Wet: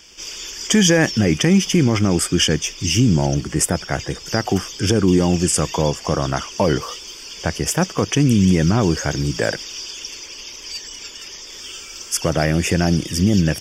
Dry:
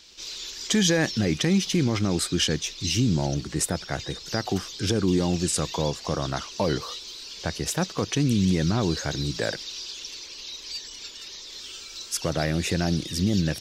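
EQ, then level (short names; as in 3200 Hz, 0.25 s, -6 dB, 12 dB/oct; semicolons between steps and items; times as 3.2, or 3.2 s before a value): Butterworth band-stop 4000 Hz, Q 3.1; +7.5 dB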